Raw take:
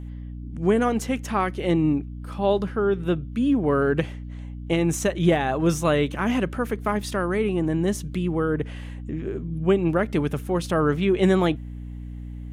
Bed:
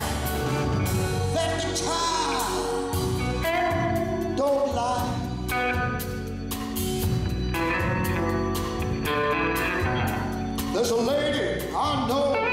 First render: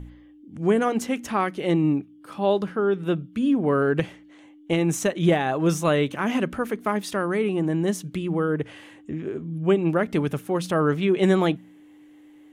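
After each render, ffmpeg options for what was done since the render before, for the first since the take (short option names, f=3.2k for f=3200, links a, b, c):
-af "bandreject=f=60:t=h:w=4,bandreject=f=120:t=h:w=4,bandreject=f=180:t=h:w=4,bandreject=f=240:t=h:w=4"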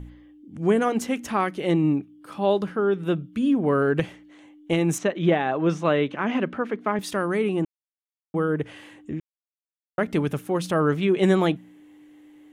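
-filter_complex "[0:a]asettb=1/sr,asplit=3[a][b][c];[a]atrim=end=4.984[d];[b]atrim=start=4.98:end=6.99,asetpts=PTS-STARTPTS,afade=t=in:d=0.004:c=qsin,afade=t=out:st=2.006:d=0.004:c=qsin,highpass=160,lowpass=3.3k[e];[c]atrim=start=6.986[f];[d][e]acrossfade=d=0.004:c1=hsin:c2=qsin[g];[g][f]acrossfade=d=0.004:c1=qsin:c2=hsin,asplit=5[h][i][j][k][l];[h]atrim=end=7.65,asetpts=PTS-STARTPTS,afade=t=out:st=7.646:d=0.004:c=hsin[m];[i]atrim=start=7.65:end=8.34,asetpts=PTS-STARTPTS,volume=0[n];[j]atrim=start=8.34:end=9.2,asetpts=PTS-STARTPTS,afade=t=in:d=0.004:c=hsin,afade=t=out:st=0.856:d=0.004:c=hsin[o];[k]atrim=start=9.2:end=9.98,asetpts=PTS-STARTPTS,volume=0[p];[l]atrim=start=9.98,asetpts=PTS-STARTPTS,afade=t=in:d=0.004:c=hsin[q];[m][n][o][p][q]concat=n=5:v=0:a=1"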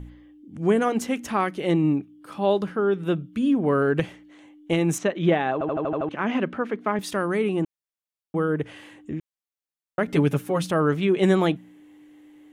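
-filter_complex "[0:a]asettb=1/sr,asplit=3[a][b][c];[a]atrim=end=10.074[d];[b]atrim=start=10.07:end=10.64,asetpts=PTS-STARTPTS,afade=t=in:d=0.004:c=qsin,afade=t=out:st=0.566:d=0.004:c=qsin,aecho=1:1:7.2:0.84,atrim=end_sample=25137[e];[c]atrim=start=10.636[f];[d][e]acrossfade=d=0.004:c1=hsin:c2=qsin[g];[g][f]acrossfade=d=0.004:c1=qsin:c2=hsin,asplit=8[h][i][j][k][l][m][n][o];[h]atrim=end=5.612[p];[i]atrim=start=5.528:end=5.612[q];[j]atrim=start=5.528:end=5.612[r];[k]atrim=start=5.528:end=5.612[s];[l]atrim=start=5.528:end=5.612[t];[m]atrim=start=5.528:end=5.612[u];[n]atrim=start=5.528:end=5.612[v];[o]atrim=start=6.088[w];[p][q]acrossfade=d=0.004:c1=hsin:c2=hsin[x];[x][r]acrossfade=d=0.004:c1=hsin:c2=hsin[y];[y][s]acrossfade=d=0.004:c1=hsin:c2=hsin[z];[z][t]acrossfade=d=0.004:c1=hsin:c2=hsin[aa];[aa][u]acrossfade=d=0.004:c1=hsin:c2=hsin[ab];[ab][v]acrossfade=d=0.004:c1=hsin:c2=hsin[ac];[ac][w]acrossfade=d=0.004:c1=hsin:c2=hsin"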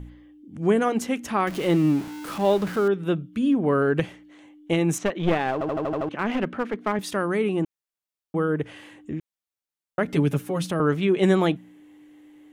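-filter_complex "[0:a]asettb=1/sr,asplit=3[a][b][c];[a]atrim=end=1.474[d];[b]atrim=start=1.47:end=2.88,asetpts=PTS-STARTPTS,afade=t=in:d=0.004:c=qsin,afade=t=out:st=1.406:d=0.004:c=qsin,aeval=exprs='val(0)+0.5*0.0266*sgn(val(0))':c=same[e];[c]atrim=start=2.876[f];[d][e]acrossfade=d=0.004:c1=hsin:c2=qsin[g];[g][f]acrossfade=d=0.004:c1=qsin:c2=hsin,asettb=1/sr,asplit=3[h][i][j];[h]atrim=end=5.024[k];[i]atrim=start=5.02:end=6.97,asetpts=PTS-STARTPTS,afade=t=in:d=0.004:c=qsin,afade=t=out:st=1.946:d=0.004:c=qsin,aeval=exprs='clip(val(0),-1,0.0501)':c=same[l];[j]atrim=start=6.966[m];[k][l]acrossfade=d=0.004:c1=hsin:c2=qsin[n];[n][m]acrossfade=d=0.004:c1=qsin:c2=hsin,asettb=1/sr,asplit=3[o][p][q];[o]atrim=end=10.054[r];[p]atrim=start=10.05:end=10.8,asetpts=PTS-STARTPTS,afade=t=in:d=0.004:c=qsin,afade=t=out:st=0.746:d=0.004:c=qsin,acrossover=split=350|3000[s][t][u];[t]acompressor=threshold=-31dB:ratio=2:attack=3.2:release=140:knee=2.83:detection=peak[v];[s][v][u]amix=inputs=3:normalize=0[w];[q]atrim=start=10.796[x];[r][w]acrossfade=d=0.004:c1=hsin:c2=qsin[y];[y][x]acrossfade=d=0.004:c1=qsin:c2=hsin"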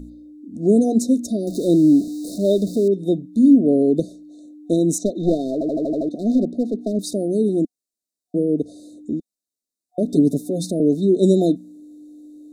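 -af "equalizer=f=125:t=o:w=1:g=-8,equalizer=f=250:t=o:w=1:g=12,equalizer=f=2k:t=o:w=1:g=11,equalizer=f=8k:t=o:w=1:g=7,afftfilt=real='re*(1-between(b*sr/4096,730,3600))':imag='im*(1-between(b*sr/4096,730,3600))':win_size=4096:overlap=0.75"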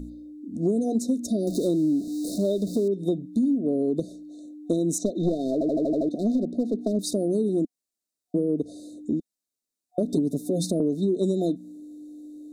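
-af "acompressor=threshold=-20dB:ratio=12"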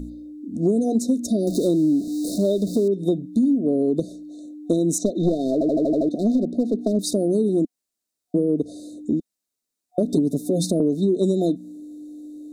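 -af "volume=4dB"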